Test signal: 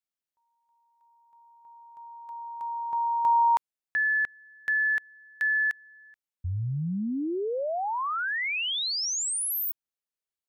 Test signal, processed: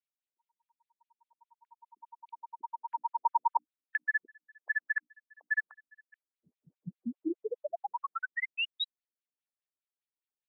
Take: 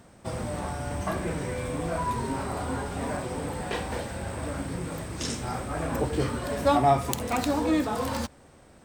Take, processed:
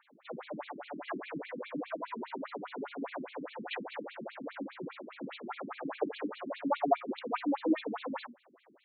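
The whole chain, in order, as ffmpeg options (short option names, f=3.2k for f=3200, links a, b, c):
-af "bandreject=f=60:t=h:w=6,bandreject=f=120:t=h:w=6,bandreject=f=180:t=h:w=6,bandreject=f=240:t=h:w=6,bandreject=f=300:t=h:w=6,afftfilt=real='re*between(b*sr/1024,240*pow(3200/240,0.5+0.5*sin(2*PI*4.9*pts/sr))/1.41,240*pow(3200/240,0.5+0.5*sin(2*PI*4.9*pts/sr))*1.41)':imag='im*between(b*sr/1024,240*pow(3200/240,0.5+0.5*sin(2*PI*4.9*pts/sr))/1.41,240*pow(3200/240,0.5+0.5*sin(2*PI*4.9*pts/sr))*1.41)':win_size=1024:overlap=0.75"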